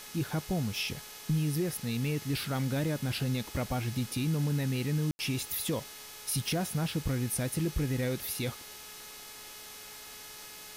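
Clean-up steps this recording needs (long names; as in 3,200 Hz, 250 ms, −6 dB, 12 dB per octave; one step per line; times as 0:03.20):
hum removal 424.1 Hz, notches 15
ambience match 0:05.11–0:05.19
noise reduction from a noise print 30 dB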